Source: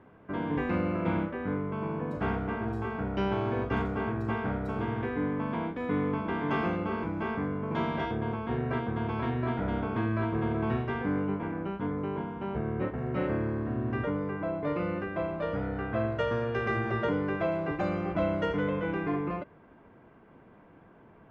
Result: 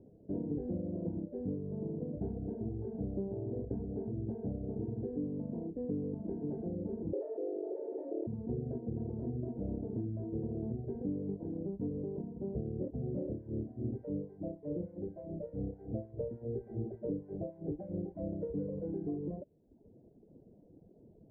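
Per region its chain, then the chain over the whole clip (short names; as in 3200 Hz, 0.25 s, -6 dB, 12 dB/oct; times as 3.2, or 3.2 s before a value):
7.13–8.27 high shelf 3200 Hz -8.5 dB + frequency shift +220 Hz + fast leveller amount 100%
13.3–18.33 CVSD 16 kbps + harmonic tremolo 3.4 Hz, crossover 900 Hz
whole clip: compressor, threshold -30 dBFS; inverse Chebyshev low-pass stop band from 1100 Hz, stop band 40 dB; reverb removal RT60 0.96 s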